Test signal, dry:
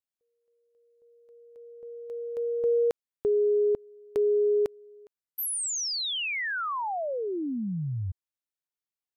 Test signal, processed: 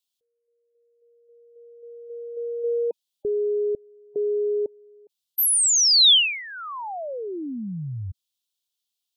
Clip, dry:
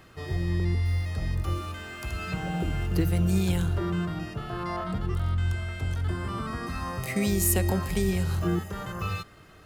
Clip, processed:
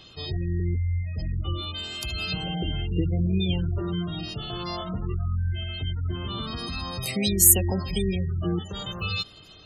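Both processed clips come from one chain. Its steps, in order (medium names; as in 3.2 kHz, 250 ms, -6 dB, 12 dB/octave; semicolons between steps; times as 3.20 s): spectral gate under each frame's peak -25 dB strong; resonant high shelf 2.5 kHz +10.5 dB, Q 3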